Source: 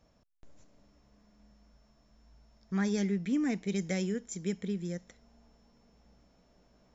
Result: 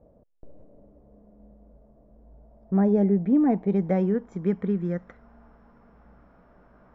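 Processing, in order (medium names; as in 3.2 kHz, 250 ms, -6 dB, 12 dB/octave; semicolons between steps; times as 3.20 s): low-pass sweep 540 Hz -> 1.4 kHz, 2.17–5.22 s; trim +8.5 dB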